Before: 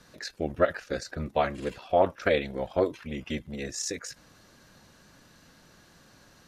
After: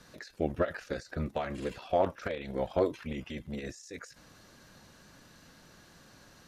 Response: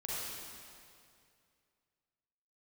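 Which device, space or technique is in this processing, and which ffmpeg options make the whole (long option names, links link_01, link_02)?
de-esser from a sidechain: -filter_complex "[0:a]asplit=2[link_01][link_02];[link_02]highpass=4200,apad=whole_len=285622[link_03];[link_01][link_03]sidechaincompress=threshold=-50dB:ratio=6:attack=1.5:release=54"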